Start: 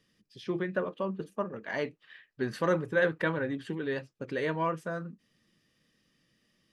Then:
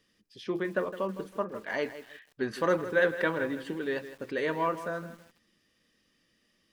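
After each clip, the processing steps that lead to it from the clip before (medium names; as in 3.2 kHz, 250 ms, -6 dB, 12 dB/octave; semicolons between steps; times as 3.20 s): peaking EQ 140 Hz -9 dB 0.82 oct; bit-crushed delay 161 ms, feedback 35%, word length 8-bit, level -12.5 dB; trim +1.5 dB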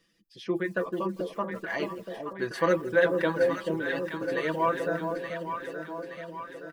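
reverb removal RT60 0.7 s; comb 6 ms, depth 67%; echo whose repeats swap between lows and highs 436 ms, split 830 Hz, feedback 74%, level -4 dB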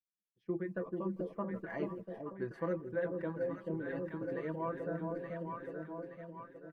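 expander -37 dBFS; FFT filter 140 Hz 0 dB, 2.1 kHz -14 dB, 3.5 kHz -24 dB; gain riding within 3 dB 0.5 s; trim -3 dB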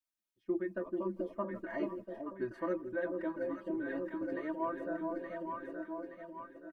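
comb 3.2 ms, depth 93%; trim -1.5 dB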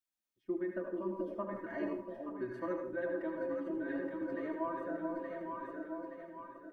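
reverberation RT60 0.50 s, pre-delay 67 ms, DRR 3.5 dB; trim -2.5 dB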